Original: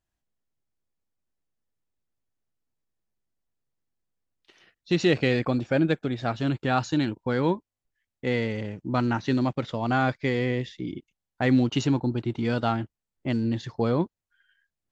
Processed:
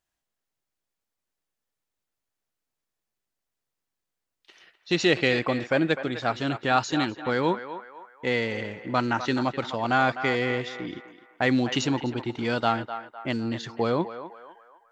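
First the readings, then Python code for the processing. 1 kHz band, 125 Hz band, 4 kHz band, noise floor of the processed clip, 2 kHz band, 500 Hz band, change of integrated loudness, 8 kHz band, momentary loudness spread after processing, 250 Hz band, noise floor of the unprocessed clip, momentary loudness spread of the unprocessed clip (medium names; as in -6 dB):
+3.5 dB, -5.5 dB, +4.5 dB, -85 dBFS, +4.5 dB, +1.0 dB, 0.0 dB, no reading, 11 LU, -2.5 dB, under -85 dBFS, 10 LU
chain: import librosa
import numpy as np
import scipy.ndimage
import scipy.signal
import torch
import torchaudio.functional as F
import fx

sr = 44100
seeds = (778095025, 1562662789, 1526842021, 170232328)

p1 = fx.low_shelf(x, sr, hz=330.0, db=-11.5)
p2 = p1 + fx.echo_banded(p1, sr, ms=253, feedback_pct=47, hz=1100.0, wet_db=-9.0, dry=0)
y = F.gain(torch.from_numpy(p2), 4.5).numpy()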